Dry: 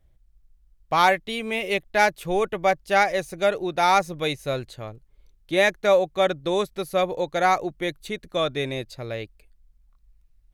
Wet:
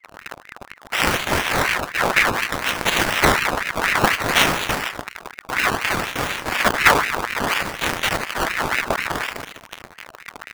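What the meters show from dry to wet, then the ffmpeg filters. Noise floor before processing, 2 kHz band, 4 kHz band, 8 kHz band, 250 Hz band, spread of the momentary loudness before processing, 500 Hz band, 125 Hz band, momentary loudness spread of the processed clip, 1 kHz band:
-60 dBFS, +8.5 dB, +8.0 dB, +12.0 dB, +2.5 dB, 13 LU, -3.5 dB, +5.0 dB, 20 LU, +2.0 dB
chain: -af "aeval=exprs='val(0)+0.5*0.0422*sgn(val(0))':c=same,agate=range=-33dB:threshold=-27dB:ratio=3:detection=peak,highshelf=f=3k:g=9.5,aecho=1:1:76|152|228|304:0.422|0.164|0.0641|0.025,aexciter=amount=8.4:drive=9:freq=4.7k,acrusher=samples=26:mix=1:aa=0.000001:lfo=1:lforange=26:lforate=0.6,aeval=exprs='val(0)*sin(2*PI*1400*n/s+1400*0.55/4.1*sin(2*PI*4.1*n/s))':c=same,volume=-9dB"

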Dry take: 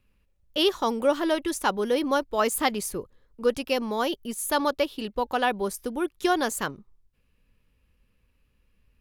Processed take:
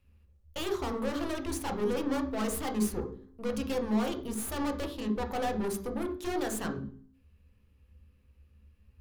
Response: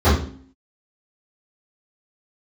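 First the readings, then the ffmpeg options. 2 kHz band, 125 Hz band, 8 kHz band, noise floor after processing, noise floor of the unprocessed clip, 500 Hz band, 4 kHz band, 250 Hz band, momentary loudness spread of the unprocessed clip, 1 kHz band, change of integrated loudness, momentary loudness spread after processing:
-10.5 dB, +5.0 dB, -6.5 dB, -65 dBFS, -69 dBFS, -8.0 dB, -11.5 dB, -2.5 dB, 7 LU, -9.5 dB, -6.5 dB, 7 LU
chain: -filter_complex "[0:a]aeval=exprs='(tanh(50.1*val(0)+0.65)-tanh(0.65))/50.1':c=same,asplit=2[a][b];[1:a]atrim=start_sample=2205[c];[b][c]afir=irnorm=-1:irlink=0,volume=-25.5dB[d];[a][d]amix=inputs=2:normalize=0"

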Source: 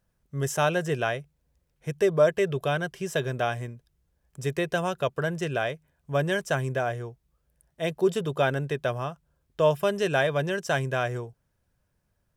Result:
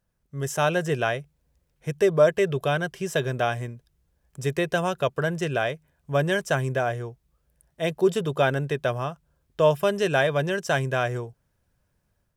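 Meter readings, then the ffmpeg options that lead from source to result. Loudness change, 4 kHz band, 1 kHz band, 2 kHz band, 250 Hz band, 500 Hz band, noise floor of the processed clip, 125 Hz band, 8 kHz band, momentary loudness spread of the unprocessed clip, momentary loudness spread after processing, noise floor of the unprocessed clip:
+2.0 dB, +2.0 dB, +2.0 dB, +2.5 dB, +2.5 dB, +2.5 dB, -73 dBFS, +2.0 dB, +1.5 dB, 13 LU, 13 LU, -74 dBFS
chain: -af "dynaudnorm=f=370:g=3:m=5dB,volume=-2.5dB"

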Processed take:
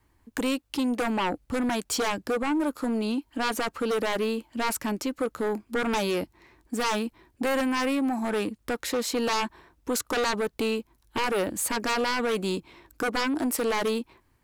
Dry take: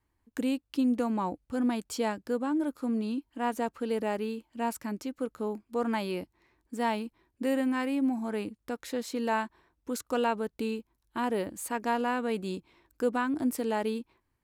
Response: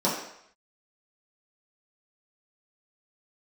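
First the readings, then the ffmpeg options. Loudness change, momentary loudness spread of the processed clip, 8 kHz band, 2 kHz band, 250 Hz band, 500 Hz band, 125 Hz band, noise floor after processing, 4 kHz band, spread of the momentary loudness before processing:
+3.5 dB, 6 LU, +10.5 dB, +7.5 dB, +1.5 dB, +4.0 dB, n/a, -67 dBFS, +11.0 dB, 9 LU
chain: -filter_complex "[0:a]acrossover=split=410|3100[a][b][c];[a]acompressor=threshold=-39dB:ratio=6[d];[d][b][c]amix=inputs=3:normalize=0,aeval=exprs='0.15*sin(PI/2*4.47*val(0)/0.15)':c=same,volume=-5.5dB"

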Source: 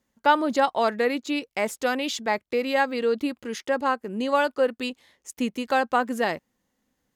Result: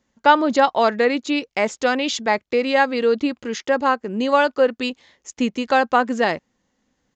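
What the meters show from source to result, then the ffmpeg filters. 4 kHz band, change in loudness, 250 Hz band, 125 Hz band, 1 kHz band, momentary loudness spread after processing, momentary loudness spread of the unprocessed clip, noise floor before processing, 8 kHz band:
+5.5 dB, +5.5 dB, +5.5 dB, n/a, +5.5 dB, 8 LU, 8 LU, -79 dBFS, +4.0 dB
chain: -af "aresample=16000,aresample=44100,volume=5.5dB"

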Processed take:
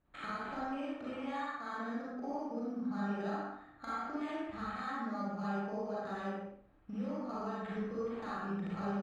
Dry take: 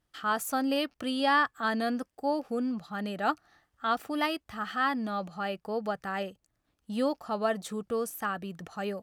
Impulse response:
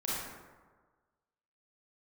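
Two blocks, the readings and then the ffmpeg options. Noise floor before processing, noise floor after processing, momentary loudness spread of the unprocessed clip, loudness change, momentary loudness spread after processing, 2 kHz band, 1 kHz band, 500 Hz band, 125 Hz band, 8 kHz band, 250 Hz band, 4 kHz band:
-79 dBFS, -60 dBFS, 7 LU, -8.5 dB, 4 LU, -11.5 dB, -9.0 dB, -8.5 dB, 0.0 dB, under -20 dB, -5.5 dB, -17.0 dB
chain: -filter_complex "[0:a]highshelf=f=11k:g=-10,bandreject=f=60:t=h:w=6,bandreject=f=120:t=h:w=6,bandreject=f=180:t=h:w=6,bandreject=f=240:t=h:w=6,bandreject=f=300:t=h:w=6,acrossover=split=1700[a][b];[a]alimiter=level_in=2.5dB:limit=-24dB:level=0:latency=1,volume=-2.5dB[c];[c][b]amix=inputs=2:normalize=0,acompressor=threshold=-45dB:ratio=16,acrusher=samples=8:mix=1:aa=0.000001,adynamicsmooth=sensitivity=6:basefreq=2.2k,asplit=2[d][e];[e]adelay=60,lowpass=f=3.8k:p=1,volume=-5dB,asplit=2[f][g];[g]adelay=60,lowpass=f=3.8k:p=1,volume=0.42,asplit=2[h][i];[i]adelay=60,lowpass=f=3.8k:p=1,volume=0.42,asplit=2[j][k];[k]adelay=60,lowpass=f=3.8k:p=1,volume=0.42,asplit=2[l][m];[m]adelay=60,lowpass=f=3.8k:p=1,volume=0.42[n];[d][f][h][j][l][n]amix=inputs=6:normalize=0[o];[1:a]atrim=start_sample=2205,afade=t=out:st=0.31:d=0.01,atrim=end_sample=14112[p];[o][p]afir=irnorm=-1:irlink=0,volume=3.5dB"

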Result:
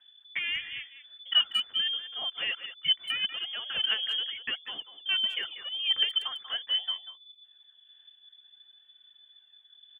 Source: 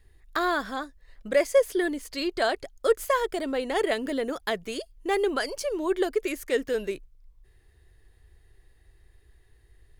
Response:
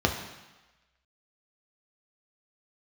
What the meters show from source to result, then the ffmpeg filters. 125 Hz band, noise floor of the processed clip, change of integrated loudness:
n/a, -61 dBFS, -1.0 dB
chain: -filter_complex "[0:a]aphaser=in_gain=1:out_gain=1:delay=2.5:decay=0.48:speed=0.5:type=sinusoidal,lowpass=f=3k:t=q:w=0.5098,lowpass=f=3k:t=q:w=0.6013,lowpass=f=3k:t=q:w=0.9,lowpass=f=3k:t=q:w=2.563,afreqshift=-3500,asplit=2[a][b];[b]adelay=190,highpass=300,lowpass=3.4k,asoftclip=type=hard:threshold=-15.5dB,volume=-11dB[c];[a][c]amix=inputs=2:normalize=0,volume=-7dB"

